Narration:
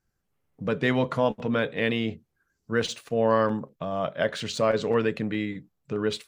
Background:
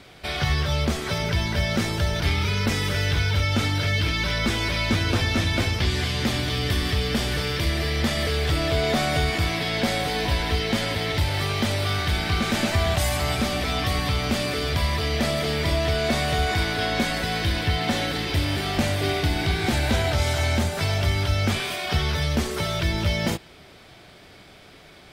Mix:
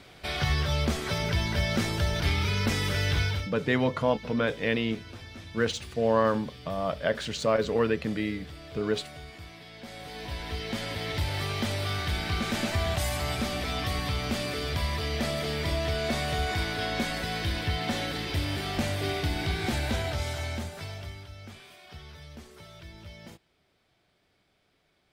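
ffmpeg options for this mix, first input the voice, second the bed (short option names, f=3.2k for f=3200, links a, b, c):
-filter_complex "[0:a]adelay=2850,volume=-1.5dB[a];[1:a]volume=12dB,afade=t=out:st=3.23:d=0.28:silence=0.125893,afade=t=in:st=9.81:d=1.48:silence=0.16788,afade=t=out:st=19.7:d=1.58:silence=0.149624[b];[a][b]amix=inputs=2:normalize=0"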